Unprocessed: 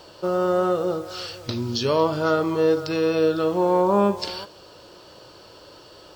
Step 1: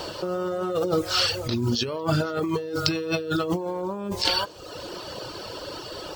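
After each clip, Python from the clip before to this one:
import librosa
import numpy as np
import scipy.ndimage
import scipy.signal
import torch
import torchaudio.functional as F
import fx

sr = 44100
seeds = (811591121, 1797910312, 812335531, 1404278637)

y = fx.dereverb_blind(x, sr, rt60_s=0.88)
y = fx.dynamic_eq(y, sr, hz=820.0, q=0.93, threshold_db=-36.0, ratio=4.0, max_db=-5)
y = fx.over_compress(y, sr, threshold_db=-33.0, ratio=-1.0)
y = y * 10.0 ** (6.5 / 20.0)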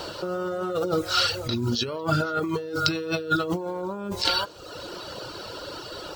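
y = fx.small_body(x, sr, hz=(1400.0, 3900.0), ring_ms=60, db=13)
y = y * 10.0 ** (-1.5 / 20.0)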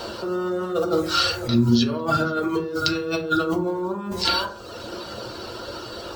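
y = fx.rev_fdn(x, sr, rt60_s=0.5, lf_ratio=1.5, hf_ratio=0.4, size_ms=26.0, drr_db=1.0)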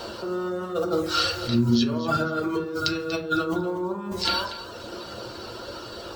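y = x + 10.0 ** (-13.5 / 20.0) * np.pad(x, (int(239 * sr / 1000.0), 0))[:len(x)]
y = y * 10.0 ** (-3.0 / 20.0)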